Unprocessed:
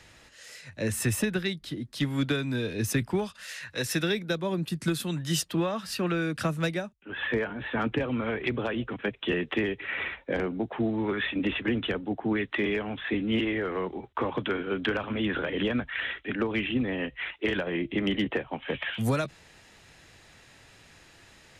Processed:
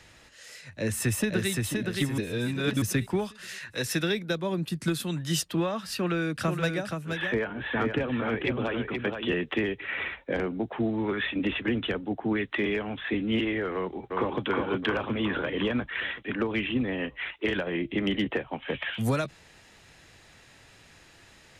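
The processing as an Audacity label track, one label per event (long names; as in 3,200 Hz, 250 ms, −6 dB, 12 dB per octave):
0.730000	1.500000	delay throw 520 ms, feedback 40%, level −3 dB
2.180000	2.820000	reverse
6.000000	9.280000	single-tap delay 475 ms −5.5 dB
13.740000	14.420000	delay throw 360 ms, feedback 60%, level −2 dB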